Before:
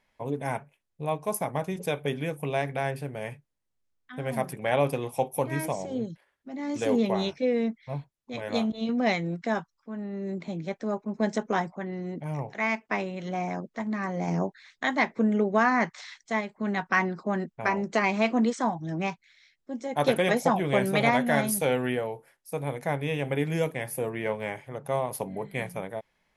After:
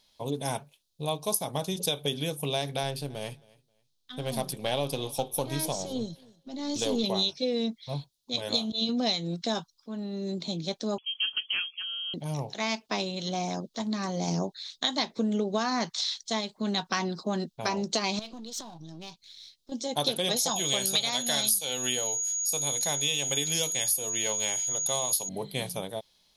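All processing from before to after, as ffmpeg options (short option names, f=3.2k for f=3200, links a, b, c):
-filter_complex "[0:a]asettb=1/sr,asplit=3[a][b][c];[a]atrim=end=2.834[d];[b]atrim=start=2.83:end=7.04,asetpts=PTS-STARTPTS,afade=t=in:d=0.004:c=qsin,afade=t=out:st=4.206:d=0.004:c=qsin,aeval=exprs='if(lt(val(0),0),0.708*val(0),val(0))':c=same,highshelf=f=5.7k:g=-4,aecho=1:1:267|534:0.0631|0.0139,atrim=end_sample=185661[e];[c]atrim=start=7.036[f];[d][e]acrossfade=d=0.004:c1=hsin:c2=qsin[g];[g][f]acrossfade=d=0.004:c1=qsin:c2=hsin,asettb=1/sr,asplit=3[h][i][j];[h]atrim=end=10.984[k];[i]atrim=start=10.98:end=12.14,asetpts=PTS-STARTPTS,afade=t=in:d=0.004:c=qsin,afade=t=out:st=1.156:d=0.004:c=qsin,equalizer=f=240:w=0.38:g=-13.5,lowpass=f=2.9k:t=q:w=0.5098,lowpass=f=2.9k:t=q:w=0.6013,lowpass=f=2.9k:t=q:w=0.9,lowpass=f=2.9k:t=q:w=2.563,afreqshift=-3400[l];[j]atrim=start=12.136[m];[k][l]acrossfade=d=0.004:c1=hsin:c2=qsin[n];[n][m]acrossfade=d=0.004:c1=qsin:c2=hsin,asettb=1/sr,asplit=3[o][p][q];[o]atrim=end=18.194[r];[p]atrim=start=18.19:end=19.72,asetpts=PTS-STARTPTS,afade=t=in:d=0.004:c=qsin,afade=t=out:st=1.526:d=0.004:c=qsin,aeval=exprs='if(lt(val(0),0),0.447*val(0),val(0))':c=same,acompressor=threshold=-40dB:ratio=6:attack=3.2:release=140:knee=1:detection=peak[s];[q]atrim=start=19.716[t];[r][s]acrossfade=d=0.004:c1=hsin:c2=qsin[u];[u][t]acrossfade=d=0.004:c1=qsin:c2=hsin,asettb=1/sr,asplit=3[v][w][x];[v]atrim=end=20.364[y];[w]atrim=start=20.36:end=25.29,asetpts=PTS-STARTPTS,afade=t=in:d=0.004:c=qsin,afade=t=out:st=4.926:d=0.004:c=qsin,aeval=exprs='val(0)+0.00447*sin(2*PI*6700*n/s)':c=same,tiltshelf=f=1.1k:g=-6.5[z];[x]atrim=start=25.286[aa];[y][z]acrossfade=d=0.004:c1=hsin:c2=qsin[ab];[ab][aa]acrossfade=d=0.004:c1=qsin:c2=hsin,highshelf=f=2.8k:t=q:w=3:g=11.5,bandreject=f=7.6k:w=14,acompressor=threshold=-24dB:ratio=6"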